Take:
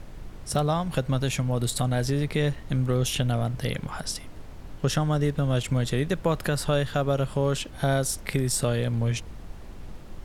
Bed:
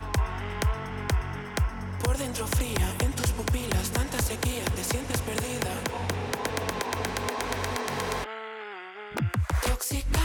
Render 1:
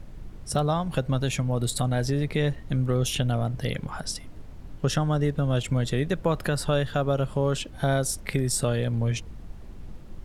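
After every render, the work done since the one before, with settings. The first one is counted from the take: denoiser 6 dB, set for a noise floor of -42 dBFS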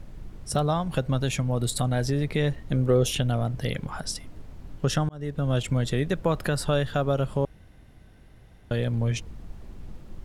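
2.72–3.12 bell 470 Hz +8 dB 1.1 oct; 5.09–5.49 fade in; 7.45–8.71 room tone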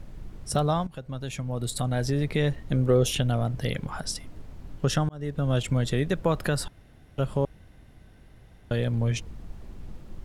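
0.87–2.21 fade in, from -16 dB; 6.68–7.18 room tone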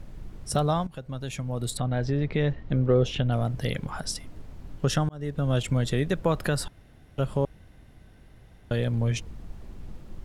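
1.77–3.32 air absorption 180 m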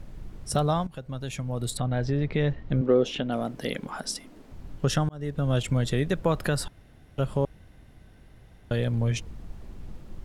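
2.81–4.52 resonant low shelf 160 Hz -13 dB, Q 1.5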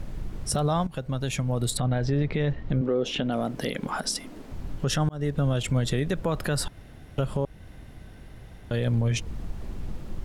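in parallel at +2 dB: compressor, threshold -33 dBFS, peak gain reduction 16 dB; on the sum: limiter -16 dBFS, peak gain reduction 7.5 dB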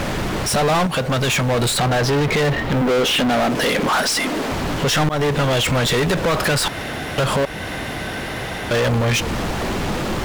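overdrive pedal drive 33 dB, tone 5300 Hz, clips at -15.5 dBFS; in parallel at -4 dB: short-mantissa float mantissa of 2-bit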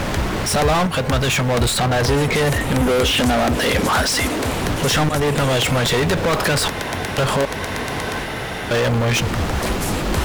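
add bed +2 dB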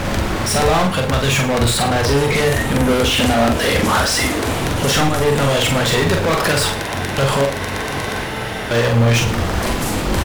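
doubler 43 ms -4 dB; tapped delay 52/110 ms -10.5/-16.5 dB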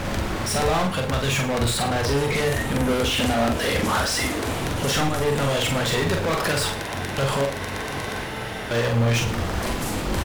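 gain -6.5 dB

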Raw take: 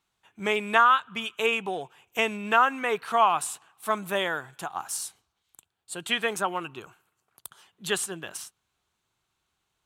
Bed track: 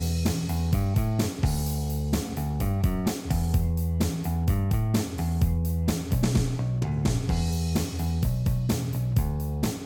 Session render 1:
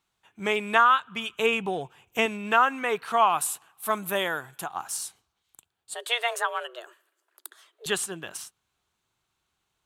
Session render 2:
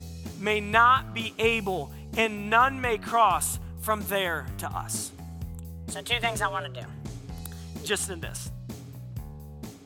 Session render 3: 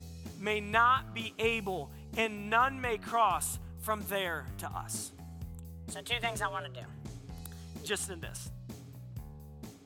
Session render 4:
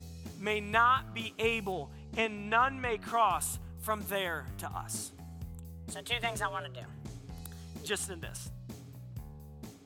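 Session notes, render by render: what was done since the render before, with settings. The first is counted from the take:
1.29–2.26 low shelf 220 Hz +10 dB; 3.32–4.64 bell 12000 Hz +11.5 dB 0.5 oct; 5.94–7.86 frequency shift +240 Hz
add bed track -13.5 dB
gain -6.5 dB
1.72–3 LPF 6700 Hz

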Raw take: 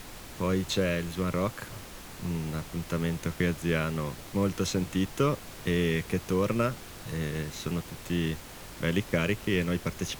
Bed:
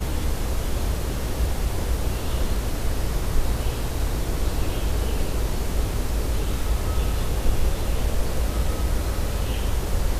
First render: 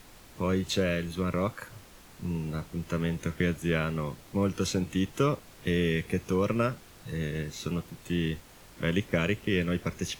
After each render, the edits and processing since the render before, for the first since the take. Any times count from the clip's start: noise print and reduce 8 dB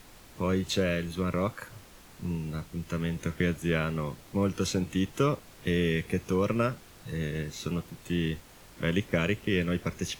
2.35–3.16 bell 600 Hz -3.5 dB 2.7 oct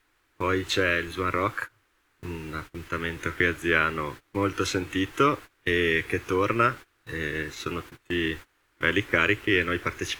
gate -40 dBFS, range -21 dB; EQ curve 120 Hz 0 dB, 190 Hz -12 dB, 310 Hz +7 dB, 630 Hz -1 dB, 1500 Hz +13 dB, 5300 Hz +1 dB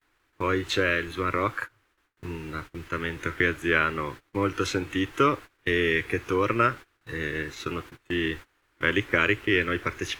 gate with hold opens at -58 dBFS; high shelf 5600 Hz -4.5 dB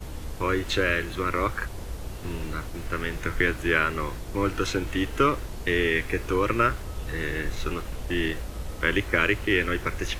add bed -11 dB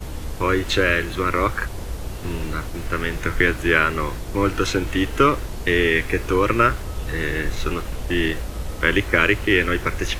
gain +5.5 dB

